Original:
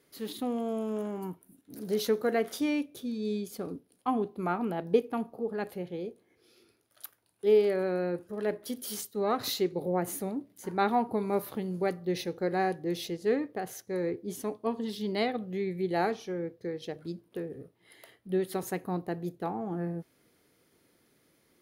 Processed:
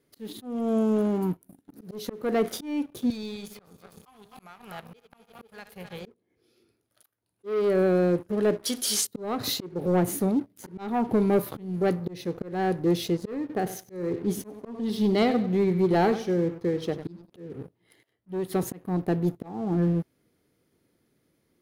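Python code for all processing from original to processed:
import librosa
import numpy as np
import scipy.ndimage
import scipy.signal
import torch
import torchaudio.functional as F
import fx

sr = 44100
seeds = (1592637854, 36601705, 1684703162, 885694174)

y = fx.chain(x, sr, fx.reverse_delay_fb(ms=127, feedback_pct=64, wet_db=-11.5),
    fx.tone_stack(knobs='10-0-10'),
    fx.band_squash(depth_pct=100), at=(3.1, 6.06))
y = fx.chain(y, sr, fx.law_mismatch(coded='mu'),
    fx.lowpass(hz=6900.0, slope=12),
    fx.tilt_eq(slope=4.0), at=(8.64, 9.07))
y = fx.chain(y, sr, fx.notch(hz=7300.0, q=12.0),
    fx.echo_feedback(ms=95, feedback_pct=31, wet_db=-13.5), at=(13.4, 17.3))
y = fx.low_shelf(y, sr, hz=410.0, db=9.0)
y = fx.leveller(y, sr, passes=2)
y = fx.auto_swell(y, sr, attack_ms=364.0)
y = y * librosa.db_to_amplitude(-3.0)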